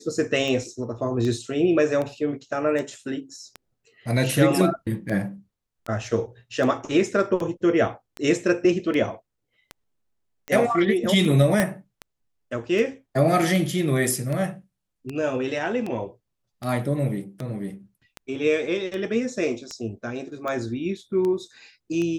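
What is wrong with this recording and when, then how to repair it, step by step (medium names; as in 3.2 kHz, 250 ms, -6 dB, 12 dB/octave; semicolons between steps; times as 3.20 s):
tick 78 rpm -18 dBFS
11.60 s: pop -6 dBFS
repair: de-click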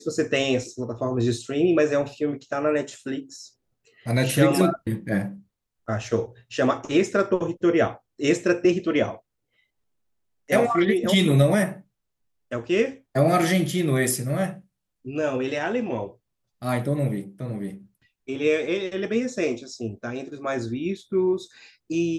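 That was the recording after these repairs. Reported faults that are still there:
11.60 s: pop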